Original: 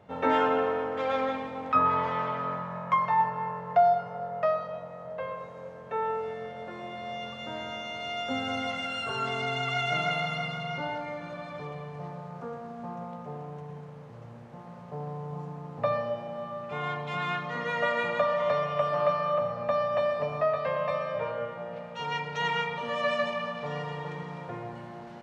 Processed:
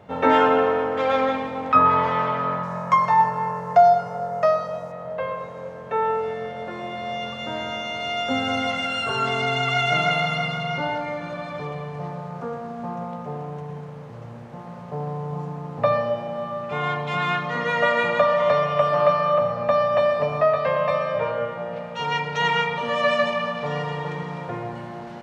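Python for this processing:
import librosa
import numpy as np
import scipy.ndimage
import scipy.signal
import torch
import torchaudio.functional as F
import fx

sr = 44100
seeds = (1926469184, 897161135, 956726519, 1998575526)

y = fx.high_shelf_res(x, sr, hz=4400.0, db=9.0, q=1.5, at=(2.63, 4.92))
y = y * librosa.db_to_amplitude(7.5)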